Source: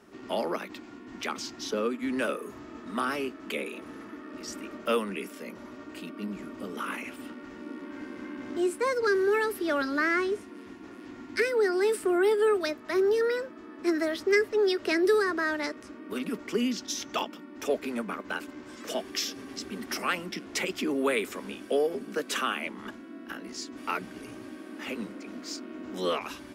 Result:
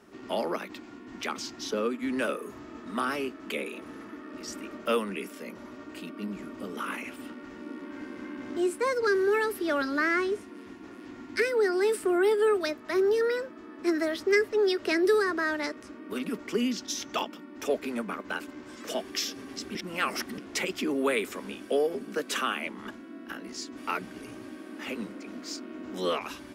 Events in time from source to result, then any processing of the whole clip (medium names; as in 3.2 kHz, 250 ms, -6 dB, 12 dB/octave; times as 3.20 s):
19.75–20.38 s: reverse